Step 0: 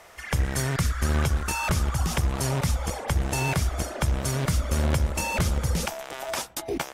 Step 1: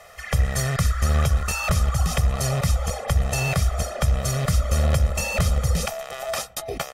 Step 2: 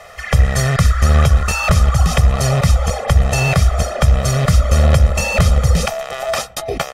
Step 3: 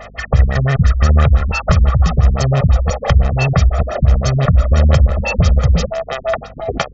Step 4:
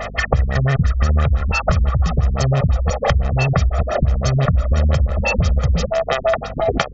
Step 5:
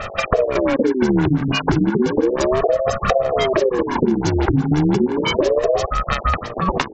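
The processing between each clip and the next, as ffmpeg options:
-af "aecho=1:1:1.6:0.81"
-af "highshelf=f=8400:g=-9.5,volume=2.66"
-filter_complex "[0:a]asplit=2[s0][s1];[s1]acompressor=threshold=0.0794:ratio=5,volume=1[s2];[s0][s2]amix=inputs=2:normalize=0,aeval=exprs='val(0)+0.0126*(sin(2*PI*50*n/s)+sin(2*PI*2*50*n/s)/2+sin(2*PI*3*50*n/s)/3+sin(2*PI*4*50*n/s)/4+sin(2*PI*5*50*n/s)/5)':c=same,afftfilt=real='re*lt(b*sr/1024,300*pow(7700/300,0.5+0.5*sin(2*PI*5.9*pts/sr)))':imag='im*lt(b*sr/1024,300*pow(7700/300,0.5+0.5*sin(2*PI*5.9*pts/sr)))':win_size=1024:overlap=0.75,volume=0.891"
-af "acompressor=threshold=0.0794:ratio=5,volume=2.37"
-af "aeval=exprs='val(0)*sin(2*PI*410*n/s+410*0.5/0.33*sin(2*PI*0.33*n/s))':c=same,volume=1.19"

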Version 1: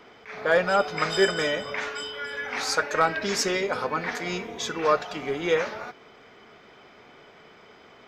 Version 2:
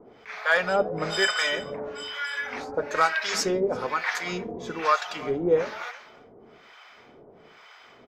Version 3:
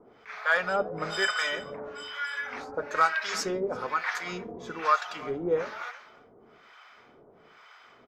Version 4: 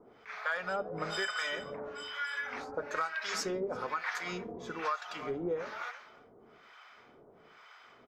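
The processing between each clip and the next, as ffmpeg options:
-filter_complex "[0:a]bandreject=f=50:t=h:w=6,bandreject=f=100:t=h:w=6,bandreject=f=150:t=h:w=6,bandreject=f=200:t=h:w=6,aecho=1:1:337:0.141,acrossover=split=750[s0][s1];[s0]aeval=exprs='val(0)*(1-1/2+1/2*cos(2*PI*1.1*n/s))':c=same[s2];[s1]aeval=exprs='val(0)*(1-1/2-1/2*cos(2*PI*1.1*n/s))':c=same[s3];[s2][s3]amix=inputs=2:normalize=0,volume=1.68"
-af "equalizer=f=1300:t=o:w=0.75:g=5.5,volume=0.531"
-af "acompressor=threshold=0.0398:ratio=6,volume=0.75"

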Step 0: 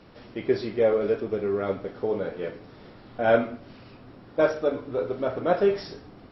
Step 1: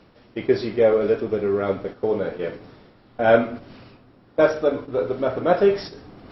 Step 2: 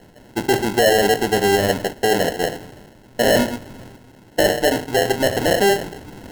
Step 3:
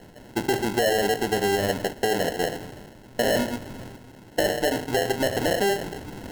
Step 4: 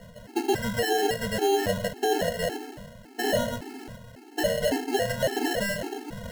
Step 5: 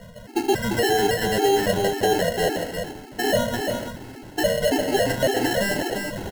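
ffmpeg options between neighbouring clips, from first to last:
-af "agate=range=0.316:threshold=0.0158:ratio=16:detection=peak,areverse,acompressor=mode=upward:threshold=0.0126:ratio=2.5,areverse,volume=1.68"
-af "acrusher=samples=37:mix=1:aa=0.000001,alimiter=limit=0.168:level=0:latency=1:release=13,volume=2"
-af "acompressor=threshold=0.0708:ratio=2.5"
-af "aeval=exprs='0.251*sin(PI/2*1.58*val(0)/0.251)':c=same,afftfilt=real='re*gt(sin(2*PI*1.8*pts/sr)*(1-2*mod(floor(b*sr/1024/230),2)),0)':imag='im*gt(sin(2*PI*1.8*pts/sr)*(1-2*mod(floor(b*sr/1024/230),2)),0)':win_size=1024:overlap=0.75,volume=0.562"
-af "aecho=1:1:346:0.531,volume=1.58"

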